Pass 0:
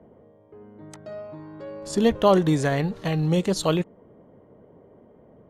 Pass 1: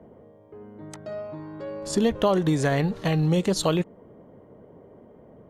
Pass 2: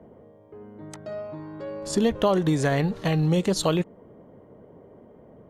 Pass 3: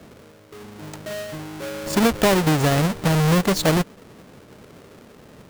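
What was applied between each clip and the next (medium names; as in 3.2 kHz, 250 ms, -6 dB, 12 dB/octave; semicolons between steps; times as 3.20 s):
compression 4:1, threshold -21 dBFS, peak gain reduction 7.5 dB; trim +2.5 dB
no audible change
square wave that keeps the level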